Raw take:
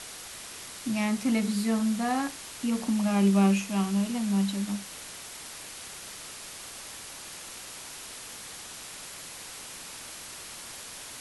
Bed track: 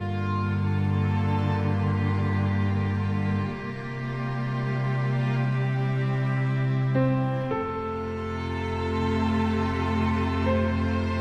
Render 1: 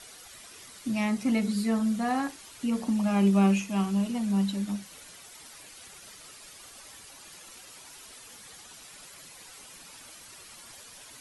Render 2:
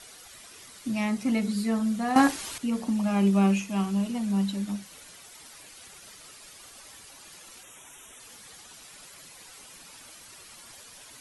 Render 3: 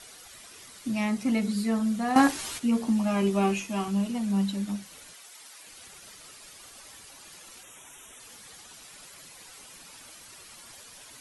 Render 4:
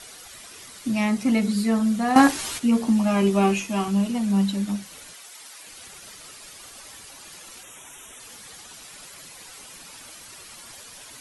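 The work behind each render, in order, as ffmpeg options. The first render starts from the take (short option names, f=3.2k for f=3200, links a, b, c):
-af "afftdn=nr=10:nf=-43"
-filter_complex "[0:a]asettb=1/sr,asplit=3[a][b][c];[a]atrim=end=7.634[d];[b]atrim=start=7.63:end=8.2,asetpts=PTS-STARTPTS,afade=t=in:d=0.004:c=qsin,afade=t=out:st=0.566:d=0.004:c=qsin,asuperstop=centerf=4600:order=8:qfactor=2.5[e];[c]atrim=start=8.196[f];[d][e]acrossfade=d=0.004:c1=hsin:c2=qsin[g];[g][f]acrossfade=d=0.004:c1=qsin:c2=hsin,asplit=3[h][i][j];[h]atrim=end=2.162[k];[i]atrim=start=2.158:end=2.582,asetpts=PTS-STARTPTS,volume=11dB[l];[j]atrim=start=2.578[m];[k][l]acrossfade=d=0.004:c1=hsin:c2=hsin[n];[n][m]acrossfade=d=0.004:c1=hsin:c2=hsin"
-filter_complex "[0:a]asettb=1/sr,asplit=3[a][b][c];[a]atrim=end=2.344[d];[b]atrim=start=2.34:end=3.88,asetpts=PTS-STARTPTS,afade=t=in:d=0.004:c=qsin,afade=t=out:st=1.536:d=0.004:c=qsin,asplit=2[e][f];[f]adelay=13,volume=-5dB[g];[e][g]amix=inputs=2:normalize=0,atrim=end_sample=67914[h];[c]atrim=start=3.876[i];[d][h]acrossfade=d=0.004:c1=hsin:c2=qsin[j];[j][i]acrossfade=d=0.004:c1=qsin:c2=hsin,asettb=1/sr,asplit=3[k][l][m];[k]atrim=end=5.134[n];[l]atrim=start=5.13:end=5.67,asetpts=PTS-STARTPTS,afade=t=in:d=0.004:c=qsin,afade=t=out:st=0.536:d=0.004:c=qsin,highpass=f=680:p=1[o];[m]atrim=start=5.666[p];[n][o]acrossfade=d=0.004:c1=hsin:c2=qsin[q];[q][p]acrossfade=d=0.004:c1=qsin:c2=hsin"
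-af "volume=5dB"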